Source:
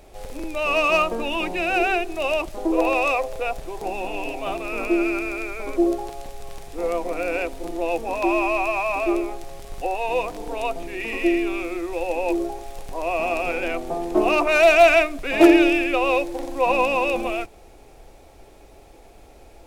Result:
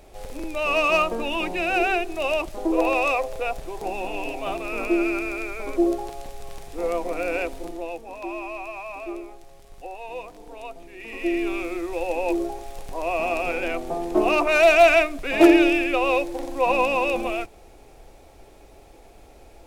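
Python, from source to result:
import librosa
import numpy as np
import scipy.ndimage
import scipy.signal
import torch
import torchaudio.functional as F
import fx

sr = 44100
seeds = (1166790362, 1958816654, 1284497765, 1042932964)

y = fx.gain(x, sr, db=fx.line((7.57, -1.0), (8.02, -11.5), (10.95, -11.5), (11.47, -1.0)))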